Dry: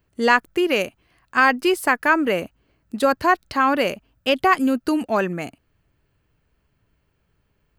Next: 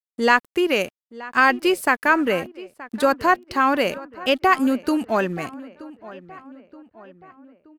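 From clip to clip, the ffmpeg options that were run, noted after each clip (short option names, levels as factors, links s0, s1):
-filter_complex "[0:a]aeval=exprs='sgn(val(0))*max(abs(val(0))-0.00422,0)':c=same,asplit=2[s0][s1];[s1]adelay=925,lowpass=f=2600:p=1,volume=0.126,asplit=2[s2][s3];[s3]adelay=925,lowpass=f=2600:p=1,volume=0.53,asplit=2[s4][s5];[s5]adelay=925,lowpass=f=2600:p=1,volume=0.53,asplit=2[s6][s7];[s7]adelay=925,lowpass=f=2600:p=1,volume=0.53[s8];[s0][s2][s4][s6][s8]amix=inputs=5:normalize=0"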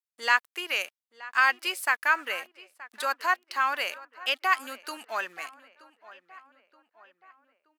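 -af "highpass=1200,volume=0.708"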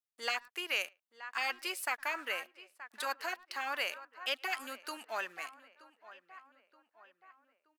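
-filter_complex "[0:a]asplit=2[s0][s1];[s1]adelay=110,highpass=300,lowpass=3400,asoftclip=type=hard:threshold=0.126,volume=0.0316[s2];[s0][s2]amix=inputs=2:normalize=0,afftfilt=real='re*lt(hypot(re,im),0.316)':imag='im*lt(hypot(re,im),0.316)':win_size=1024:overlap=0.75,volume=0.596"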